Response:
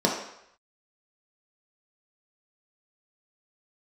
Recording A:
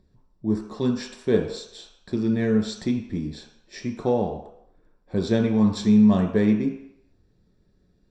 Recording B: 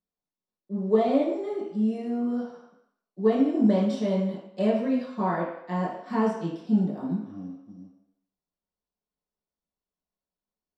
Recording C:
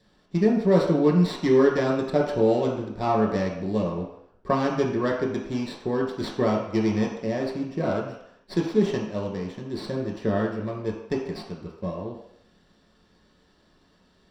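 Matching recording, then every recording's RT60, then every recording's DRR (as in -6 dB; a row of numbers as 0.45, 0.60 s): C; 0.75, 0.75, 0.75 s; 2.0, -6.5, -2.5 dB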